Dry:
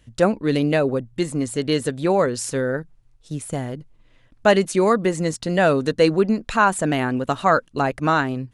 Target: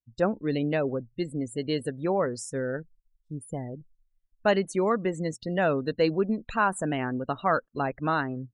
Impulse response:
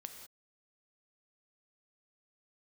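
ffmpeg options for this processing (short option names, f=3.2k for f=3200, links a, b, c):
-af "afftdn=nr=35:nf=-32,volume=-7.5dB"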